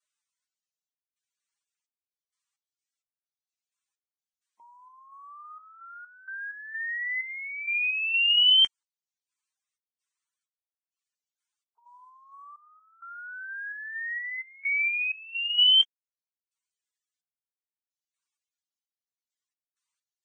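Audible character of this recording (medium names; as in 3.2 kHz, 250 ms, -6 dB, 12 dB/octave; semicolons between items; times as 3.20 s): random-step tremolo 4.3 Hz, depth 95%; Vorbis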